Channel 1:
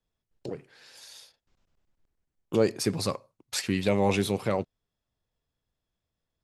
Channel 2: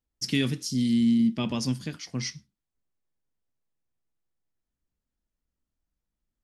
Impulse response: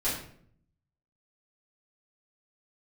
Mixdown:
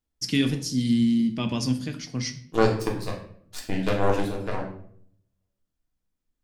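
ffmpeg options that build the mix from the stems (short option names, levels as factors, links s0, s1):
-filter_complex "[0:a]bandreject=f=2200:w=6.1,aeval=exprs='0.282*(cos(1*acos(clip(val(0)/0.282,-1,1)))-cos(1*PI/2))+0.0794*(cos(3*acos(clip(val(0)/0.282,-1,1)))-cos(3*PI/2))+0.0251*(cos(4*acos(clip(val(0)/0.282,-1,1)))-cos(4*PI/2))+0.00447*(cos(6*acos(clip(val(0)/0.282,-1,1)))-cos(6*PI/2))+0.00158*(cos(7*acos(clip(val(0)/0.282,-1,1)))-cos(7*PI/2))':c=same,volume=1,asplit=2[s0][s1];[s1]volume=0.631[s2];[1:a]volume=1,asplit=2[s3][s4];[s4]volume=0.178[s5];[2:a]atrim=start_sample=2205[s6];[s2][s5]amix=inputs=2:normalize=0[s7];[s7][s6]afir=irnorm=-1:irlink=0[s8];[s0][s3][s8]amix=inputs=3:normalize=0"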